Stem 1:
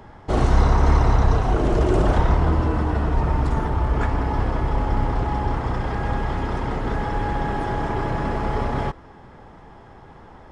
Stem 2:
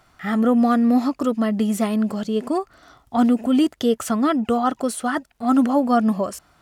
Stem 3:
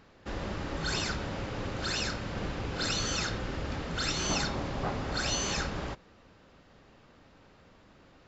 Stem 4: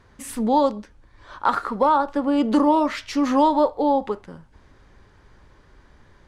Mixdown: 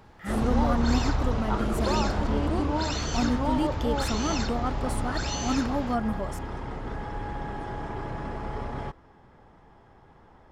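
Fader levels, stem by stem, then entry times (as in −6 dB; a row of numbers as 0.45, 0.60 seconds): −10.0, −10.5, −2.5, −12.5 decibels; 0.00, 0.00, 0.00, 0.05 seconds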